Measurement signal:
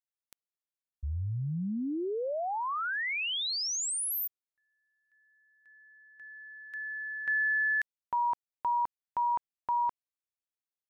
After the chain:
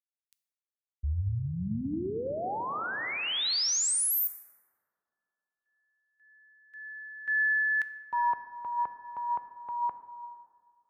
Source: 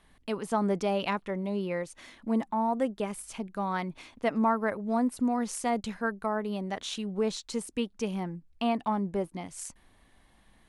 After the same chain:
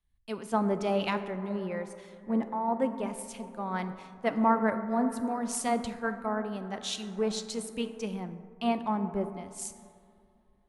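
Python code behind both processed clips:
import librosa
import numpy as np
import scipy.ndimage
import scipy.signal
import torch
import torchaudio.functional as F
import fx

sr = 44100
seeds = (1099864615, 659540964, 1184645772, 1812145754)

y = fx.rev_plate(x, sr, seeds[0], rt60_s=4.4, hf_ratio=0.25, predelay_ms=0, drr_db=7.5)
y = fx.band_widen(y, sr, depth_pct=70)
y = y * librosa.db_to_amplitude(-1.5)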